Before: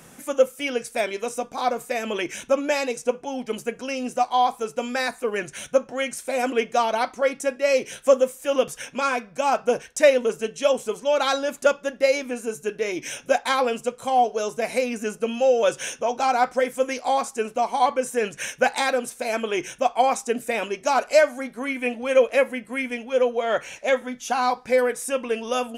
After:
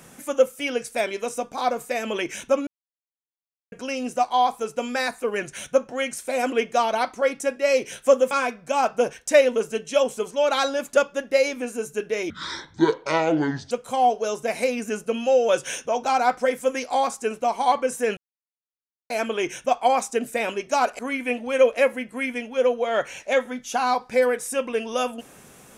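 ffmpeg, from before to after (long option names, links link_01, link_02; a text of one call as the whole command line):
ffmpeg -i in.wav -filter_complex "[0:a]asplit=9[link_01][link_02][link_03][link_04][link_05][link_06][link_07][link_08][link_09];[link_01]atrim=end=2.67,asetpts=PTS-STARTPTS,afade=type=out:start_time=2.666:duration=0.004:curve=hsin[link_10];[link_02]atrim=start=2.67:end=3.72,asetpts=PTS-STARTPTS,volume=0[link_11];[link_03]atrim=start=3.72:end=8.312,asetpts=PTS-STARTPTS,afade=type=in:duration=0.004:curve=hsin[link_12];[link_04]atrim=start=8.998:end=12.994[link_13];[link_05]atrim=start=12.99:end=13.85,asetpts=PTS-STARTPTS,asetrate=26901,aresample=44100[link_14];[link_06]atrim=start=13.846:end=18.31,asetpts=PTS-STARTPTS,afade=type=out:start_time=4.46:duration=0.004:curve=hsin[link_15];[link_07]atrim=start=18.31:end=19.24,asetpts=PTS-STARTPTS,volume=0[link_16];[link_08]atrim=start=19.24:end=21.132,asetpts=PTS-STARTPTS,afade=type=in:duration=0.004:curve=hsin[link_17];[link_09]atrim=start=21.548[link_18];[link_10][link_11][link_12]concat=n=3:v=0:a=1[link_19];[link_19][link_13]acrossfade=duration=0.004:curve1=hsin:curve2=hsin[link_20];[link_20][link_14]acrossfade=duration=0.004:curve1=hsin:curve2=hsin[link_21];[link_15][link_16][link_17]concat=n=3:v=0:a=1[link_22];[link_21][link_22]acrossfade=duration=0.004:curve1=hsin:curve2=hsin[link_23];[link_23][link_18]acrossfade=duration=0.004:curve1=hsin:curve2=hsin" out.wav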